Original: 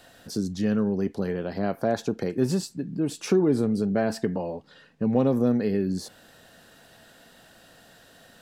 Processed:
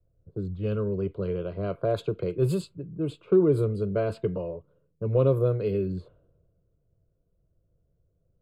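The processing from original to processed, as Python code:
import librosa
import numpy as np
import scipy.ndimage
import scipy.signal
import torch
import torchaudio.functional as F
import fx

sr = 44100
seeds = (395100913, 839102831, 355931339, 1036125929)

y = fx.low_shelf(x, sr, hz=250.0, db=11.5)
y = fx.fixed_phaser(y, sr, hz=1200.0, stages=8)
y = fx.env_lowpass(y, sr, base_hz=320.0, full_db=-20.5)
y = fx.band_widen(y, sr, depth_pct=40)
y = y * librosa.db_to_amplitude(-1.5)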